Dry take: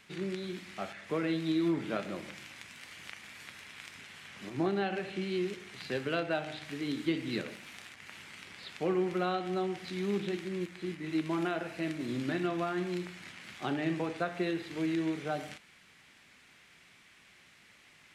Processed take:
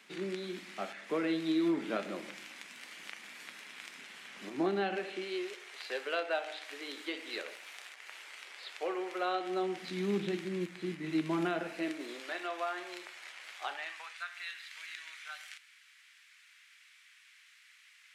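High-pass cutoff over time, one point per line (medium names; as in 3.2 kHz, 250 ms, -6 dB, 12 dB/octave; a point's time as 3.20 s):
high-pass 24 dB/octave
4.90 s 210 Hz
5.50 s 450 Hz
9.15 s 450 Hz
10.12 s 130 Hz
11.50 s 130 Hz
12.25 s 520 Hz
13.52 s 520 Hz
14.17 s 1.4 kHz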